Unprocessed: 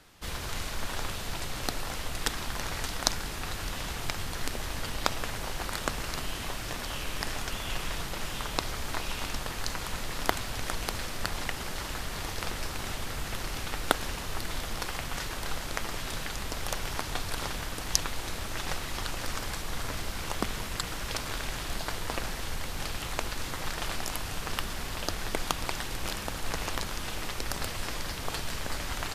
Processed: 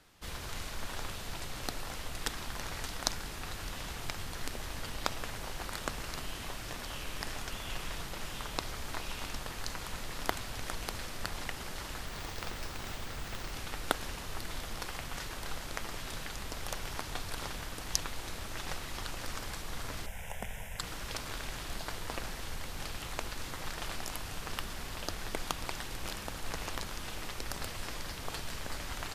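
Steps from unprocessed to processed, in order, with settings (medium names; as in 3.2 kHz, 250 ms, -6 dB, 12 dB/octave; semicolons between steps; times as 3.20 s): 12.06–13.53 s: careless resampling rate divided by 2×, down filtered, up hold; 20.06–20.79 s: static phaser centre 1.2 kHz, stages 6; trim -5.5 dB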